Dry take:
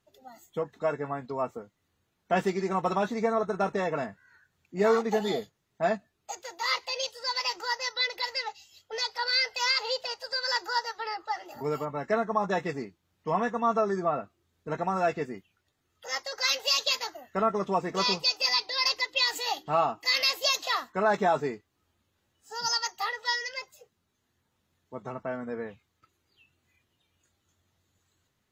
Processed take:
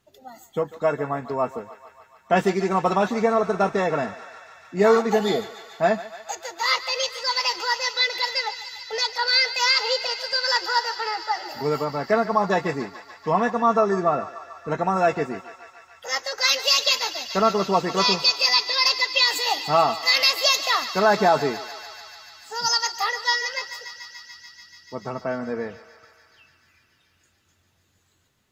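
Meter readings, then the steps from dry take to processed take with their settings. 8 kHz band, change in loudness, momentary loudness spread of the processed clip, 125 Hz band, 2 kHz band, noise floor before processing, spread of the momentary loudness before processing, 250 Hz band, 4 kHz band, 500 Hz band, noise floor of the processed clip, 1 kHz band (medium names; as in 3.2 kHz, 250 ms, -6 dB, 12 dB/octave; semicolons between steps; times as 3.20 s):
+7.0 dB, +7.0 dB, 16 LU, +6.5 dB, +7.0 dB, -77 dBFS, 14 LU, +6.5 dB, +7.0 dB, +6.5 dB, -64 dBFS, +6.5 dB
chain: thinning echo 145 ms, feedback 85%, high-pass 660 Hz, level -14 dB; trim +6.5 dB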